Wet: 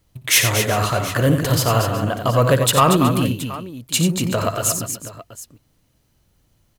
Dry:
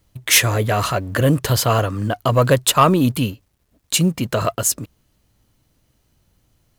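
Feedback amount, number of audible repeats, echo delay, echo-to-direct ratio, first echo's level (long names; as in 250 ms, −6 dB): repeats not evenly spaced, 5, 59 ms, −3.5 dB, −13.5 dB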